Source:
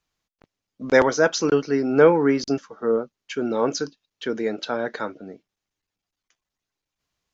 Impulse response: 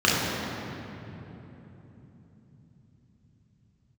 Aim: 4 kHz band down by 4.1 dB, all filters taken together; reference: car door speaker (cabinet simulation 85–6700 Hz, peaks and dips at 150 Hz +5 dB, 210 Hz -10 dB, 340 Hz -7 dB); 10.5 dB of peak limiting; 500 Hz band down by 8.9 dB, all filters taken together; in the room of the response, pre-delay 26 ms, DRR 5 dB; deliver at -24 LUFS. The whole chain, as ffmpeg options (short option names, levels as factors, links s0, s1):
-filter_complex "[0:a]equalizer=f=500:t=o:g=-8.5,equalizer=f=4000:t=o:g=-5,alimiter=limit=0.133:level=0:latency=1,asplit=2[s0][s1];[1:a]atrim=start_sample=2205,adelay=26[s2];[s1][s2]afir=irnorm=-1:irlink=0,volume=0.0562[s3];[s0][s3]amix=inputs=2:normalize=0,highpass=85,equalizer=f=150:t=q:w=4:g=5,equalizer=f=210:t=q:w=4:g=-10,equalizer=f=340:t=q:w=4:g=-7,lowpass=f=6700:w=0.5412,lowpass=f=6700:w=1.3066,volume=1.88"